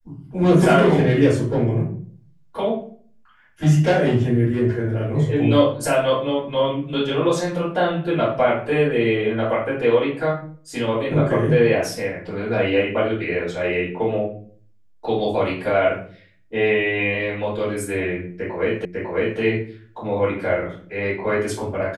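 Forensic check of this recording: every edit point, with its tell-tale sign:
18.85 s: repeat of the last 0.55 s

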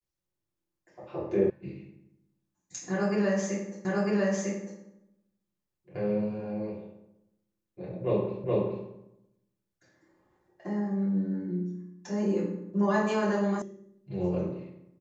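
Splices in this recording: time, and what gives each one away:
1.50 s: sound stops dead
3.85 s: repeat of the last 0.95 s
8.44 s: repeat of the last 0.42 s
13.62 s: sound stops dead

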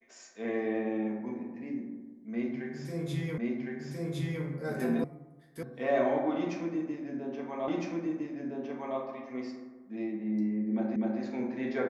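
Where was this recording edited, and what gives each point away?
3.38 s: repeat of the last 1.06 s
5.04 s: sound stops dead
5.63 s: sound stops dead
7.68 s: repeat of the last 1.31 s
10.96 s: repeat of the last 0.25 s

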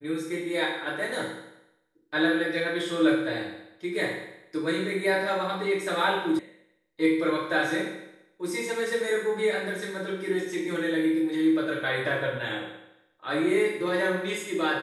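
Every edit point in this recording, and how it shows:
6.39 s: sound stops dead

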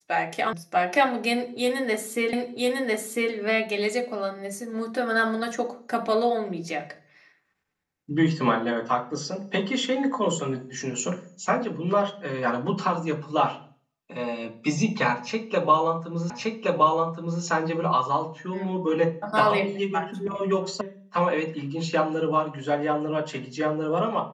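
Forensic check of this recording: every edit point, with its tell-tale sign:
0.53 s: sound stops dead
2.33 s: repeat of the last 1 s
16.30 s: repeat of the last 1.12 s
20.81 s: sound stops dead

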